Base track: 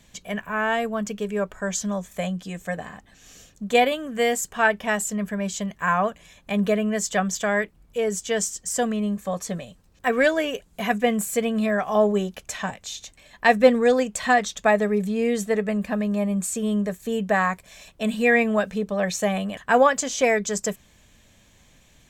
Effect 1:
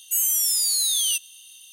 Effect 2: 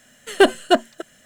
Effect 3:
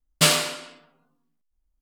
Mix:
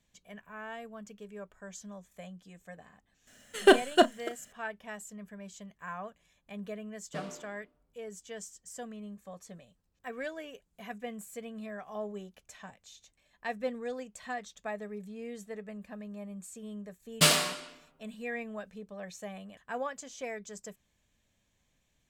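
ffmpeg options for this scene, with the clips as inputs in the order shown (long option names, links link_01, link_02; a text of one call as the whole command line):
ffmpeg -i bed.wav -i cue0.wav -i cue1.wav -i cue2.wav -filter_complex "[3:a]asplit=2[link_01][link_02];[0:a]volume=-19dB[link_03];[2:a]asplit=2[link_04][link_05];[link_05]adelay=34,volume=-12.5dB[link_06];[link_04][link_06]amix=inputs=2:normalize=0[link_07];[link_01]bandpass=frequency=340:width_type=q:width=0.94:csg=0[link_08];[link_07]atrim=end=1.25,asetpts=PTS-STARTPTS,volume=-6dB,afade=type=in:duration=0.004:curve=hsin,afade=type=out:start_time=1.246:duration=0.004:curve=hsin,adelay=3270[link_09];[link_08]atrim=end=1.81,asetpts=PTS-STARTPTS,volume=-13.5dB,afade=type=in:duration=0.004:curve=hsin,afade=type=out:start_time=1.806:duration=0.004:curve=hsin,adelay=6930[link_10];[link_02]atrim=end=1.81,asetpts=PTS-STARTPTS,volume=-4.5dB,afade=type=in:duration=0.004:curve=hsin,afade=type=out:start_time=1.806:duration=0.004:curve=hsin,adelay=749700S[link_11];[link_03][link_09][link_10][link_11]amix=inputs=4:normalize=0" out.wav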